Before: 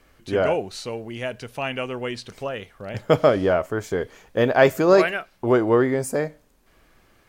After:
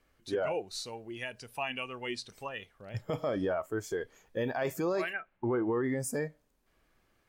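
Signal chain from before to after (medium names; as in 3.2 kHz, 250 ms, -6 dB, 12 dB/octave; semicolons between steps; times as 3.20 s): 5.12–5.82 s: low-pass 2.2 kHz -> 3.7 kHz 24 dB/octave; spectral noise reduction 11 dB; in parallel at 0 dB: compression, threshold -31 dBFS, peak gain reduction 19 dB; on the sum: peak limiter -15 dBFS, peak gain reduction 12 dB; trim -8.5 dB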